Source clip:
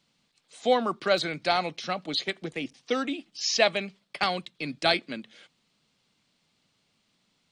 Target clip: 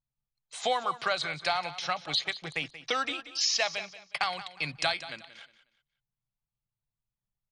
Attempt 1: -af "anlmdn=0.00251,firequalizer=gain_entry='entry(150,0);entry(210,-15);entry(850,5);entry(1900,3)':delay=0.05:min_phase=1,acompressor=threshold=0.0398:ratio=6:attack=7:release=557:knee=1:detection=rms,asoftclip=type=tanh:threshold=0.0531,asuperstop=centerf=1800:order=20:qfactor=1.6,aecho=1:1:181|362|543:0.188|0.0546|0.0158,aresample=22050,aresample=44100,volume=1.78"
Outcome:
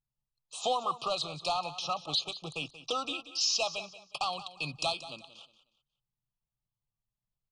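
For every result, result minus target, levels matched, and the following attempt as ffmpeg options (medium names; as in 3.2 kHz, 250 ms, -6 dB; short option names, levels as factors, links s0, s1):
saturation: distortion +18 dB; 2 kHz band -6.5 dB
-af "anlmdn=0.00251,firequalizer=gain_entry='entry(150,0);entry(210,-15);entry(850,5);entry(1900,3)':delay=0.05:min_phase=1,acompressor=threshold=0.0398:ratio=6:attack=7:release=557:knee=1:detection=rms,asoftclip=type=tanh:threshold=0.2,asuperstop=centerf=1800:order=20:qfactor=1.6,aecho=1:1:181|362|543:0.188|0.0546|0.0158,aresample=22050,aresample=44100,volume=1.78"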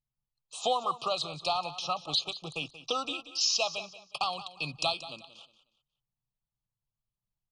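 2 kHz band -6.5 dB
-af "anlmdn=0.00251,firequalizer=gain_entry='entry(150,0);entry(210,-15);entry(850,5);entry(1900,3)':delay=0.05:min_phase=1,acompressor=threshold=0.0398:ratio=6:attack=7:release=557:knee=1:detection=rms,asoftclip=type=tanh:threshold=0.2,aecho=1:1:181|362|543:0.188|0.0546|0.0158,aresample=22050,aresample=44100,volume=1.78"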